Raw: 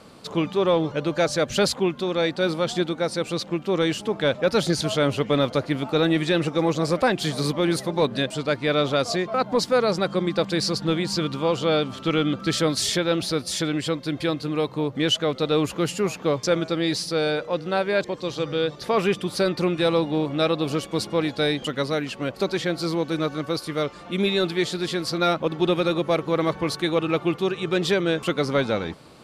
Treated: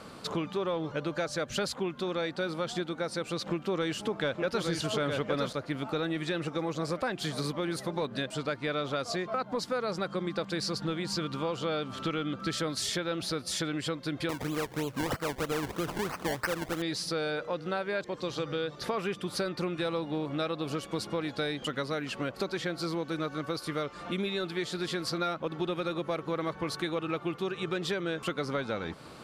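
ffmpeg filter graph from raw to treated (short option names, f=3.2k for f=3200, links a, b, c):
-filter_complex "[0:a]asettb=1/sr,asplit=3[a][b][c];[a]atrim=end=3.464[d];[b]atrim=start=3.46:end=5.53,asetpts=PTS-STARTPTS,afade=t=in:d=0.004:c=qsin,afade=t=out:st=2.066:d=0.004:c=qsin,acontrast=36,aecho=1:1:863:0.631,atrim=end_sample=91287[e];[c]atrim=start=5.526[f];[d][e]acrossfade=d=0.004:c1=hsin:c2=qsin[g];[g][f]acrossfade=d=0.004:c1=qsin:c2=hsin,asettb=1/sr,asplit=3[h][i][j];[h]atrim=end=14.294[k];[i]atrim=start=14.29:end=16.82,asetpts=PTS-STARTPTS,afade=t=in:d=0.004:c=qsin,afade=t=out:st=2.526:d=0.004:c=qsin,equalizer=f=5k:w=3.8:g=12,acrusher=samples=24:mix=1:aa=0.000001:lfo=1:lforange=24:lforate=3.1[l];[j]atrim=start=16.816[m];[k][l]acrossfade=d=0.004:c1=hsin:c2=qsin[n];[n][m]acrossfade=d=0.004:c1=qsin:c2=hsin,equalizer=f=1.4k:t=o:w=0.77:g=4.5,acompressor=threshold=-31dB:ratio=4"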